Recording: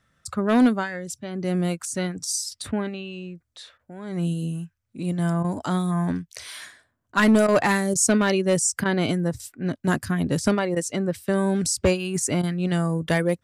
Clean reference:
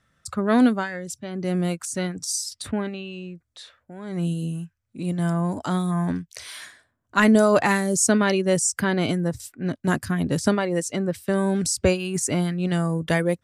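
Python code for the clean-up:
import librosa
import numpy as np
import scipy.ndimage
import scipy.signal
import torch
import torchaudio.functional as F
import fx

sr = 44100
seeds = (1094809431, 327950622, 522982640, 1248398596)

y = fx.fix_declip(x, sr, threshold_db=-11.5)
y = fx.fix_interpolate(y, sr, at_s=(3.78, 5.43, 7.12, 7.47, 7.94, 8.84, 10.75, 12.42), length_ms=12.0)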